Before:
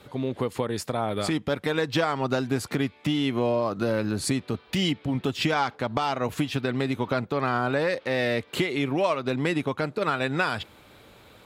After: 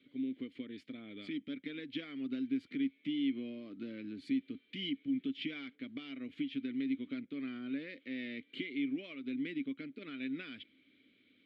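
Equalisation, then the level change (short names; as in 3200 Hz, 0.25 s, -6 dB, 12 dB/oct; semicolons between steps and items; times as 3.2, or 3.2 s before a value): vowel filter i; bell 120 Hz -2.5 dB 0.77 oct; resonant high shelf 5000 Hz -6 dB, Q 1.5; -4.0 dB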